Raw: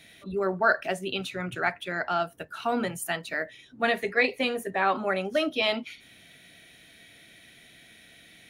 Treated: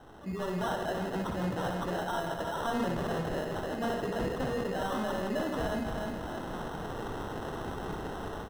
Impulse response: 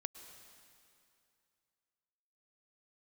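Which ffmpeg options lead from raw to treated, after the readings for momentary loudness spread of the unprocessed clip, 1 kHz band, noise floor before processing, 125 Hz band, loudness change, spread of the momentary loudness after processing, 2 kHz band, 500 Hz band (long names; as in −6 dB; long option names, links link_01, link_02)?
10 LU, −4.0 dB, −54 dBFS, +5.0 dB, −6.5 dB, 6 LU, −11.0 dB, −4.0 dB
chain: -filter_complex "[0:a]dynaudnorm=framelen=310:gausssize=3:maxgain=14.5dB,asoftclip=type=tanh:threshold=-20.5dB,highshelf=frequency=8100:gain=6.5,bandreject=frequency=400:width=12,asplit=2[link_01][link_02];[link_02]aecho=0:1:309|618|927|1236:0.282|0.0986|0.0345|0.0121[link_03];[link_01][link_03]amix=inputs=2:normalize=0,acrusher=samples=19:mix=1:aa=0.000001,highshelf=frequency=2900:gain=-11.5,alimiter=level_in=4dB:limit=-24dB:level=0:latency=1:release=84,volume=-4dB,asplit=2[link_04][link_05];[link_05]aecho=0:1:61.22|163.3:0.501|0.398[link_06];[link_04][link_06]amix=inputs=2:normalize=0"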